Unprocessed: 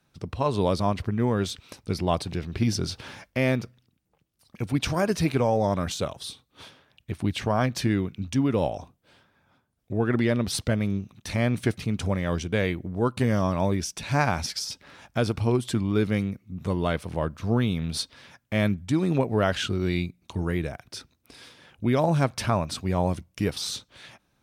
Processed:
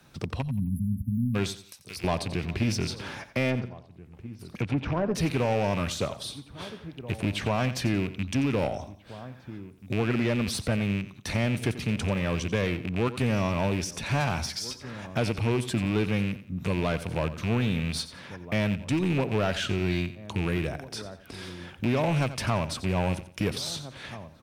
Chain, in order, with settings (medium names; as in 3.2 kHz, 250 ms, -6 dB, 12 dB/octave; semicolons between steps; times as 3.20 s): rattle on loud lows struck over -27 dBFS, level -25 dBFS; 1.51–2.04 s: pre-emphasis filter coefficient 0.97; echo from a far wall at 280 m, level -23 dB; 3.50–5.15 s: low-pass that closes with the level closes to 930 Hz, closed at -20.5 dBFS; saturation -19 dBFS, distortion -15 dB; 0.41–1.35 s: spectral selection erased 270–10000 Hz; on a send: feedback delay 88 ms, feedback 27%, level -14.5 dB; on the sum: three bands compressed up and down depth 40%